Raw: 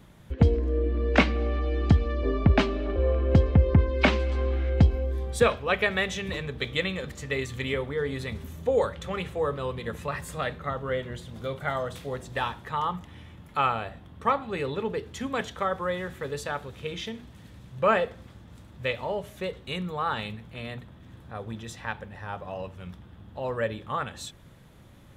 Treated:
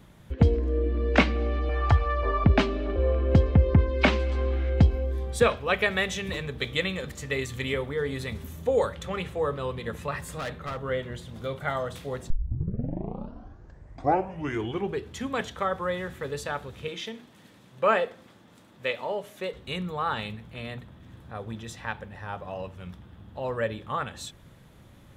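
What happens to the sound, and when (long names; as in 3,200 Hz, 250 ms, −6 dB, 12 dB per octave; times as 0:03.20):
0:01.69–0:02.44: drawn EQ curve 120 Hz 0 dB, 180 Hz −19 dB, 1,000 Hz +13 dB, 3,600 Hz −1 dB
0:05.60–0:09.03: high-shelf EQ 7,800 Hz +6 dB
0:10.26–0:10.82: hard clipping −29.5 dBFS
0:12.30: tape start 2.83 s
0:16.88–0:19.54: high-pass filter 230 Hz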